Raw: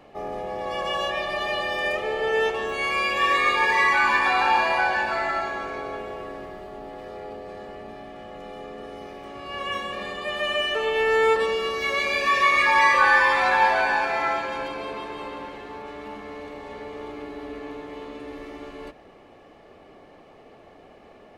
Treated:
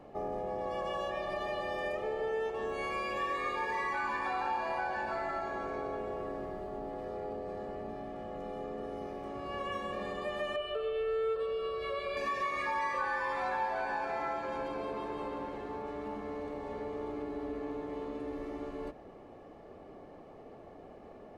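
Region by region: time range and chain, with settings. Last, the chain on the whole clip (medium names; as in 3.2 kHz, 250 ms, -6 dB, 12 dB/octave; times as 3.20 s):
10.56–12.17 s: low-pass 8.4 kHz + static phaser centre 1.3 kHz, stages 8
whole clip: peaking EQ 2.8 kHz -10.5 dB 2.2 oct; compression 3:1, threshold -34 dBFS; treble shelf 7.9 kHz -10.5 dB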